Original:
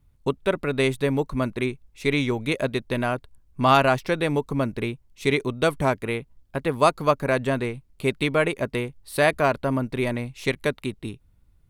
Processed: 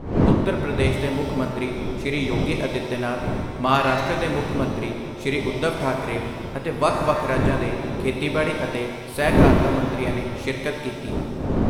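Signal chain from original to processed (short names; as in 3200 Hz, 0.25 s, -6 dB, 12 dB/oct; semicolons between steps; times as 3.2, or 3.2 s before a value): wind noise 300 Hz -25 dBFS; shimmer reverb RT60 1.8 s, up +7 st, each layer -8 dB, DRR 2.5 dB; gain -2.5 dB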